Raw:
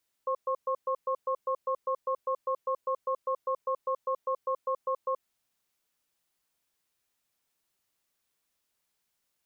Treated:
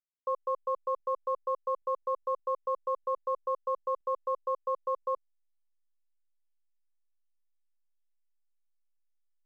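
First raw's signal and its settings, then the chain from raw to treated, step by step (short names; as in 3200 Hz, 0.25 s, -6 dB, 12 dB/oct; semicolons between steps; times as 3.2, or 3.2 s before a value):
cadence 524 Hz, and 1080 Hz, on 0.08 s, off 0.12 s, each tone -29 dBFS 4.88 s
backlash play -58 dBFS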